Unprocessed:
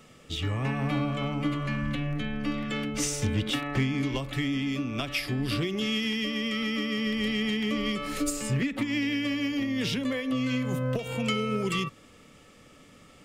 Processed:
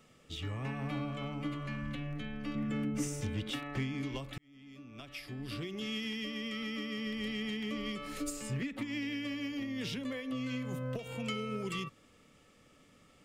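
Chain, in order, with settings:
0:02.55–0:03.21: octave-band graphic EQ 125/250/4,000 Hz +7/+7/−10 dB
0:04.38–0:05.96: fade in
level −9 dB

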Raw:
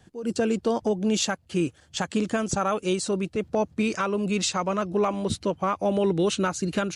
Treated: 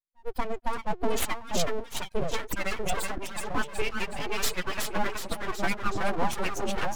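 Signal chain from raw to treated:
spectral dynamics exaggerated over time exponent 3
echo with a time of its own for lows and highs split 580 Hz, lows 640 ms, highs 371 ms, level −4 dB
full-wave rectification
level +4 dB

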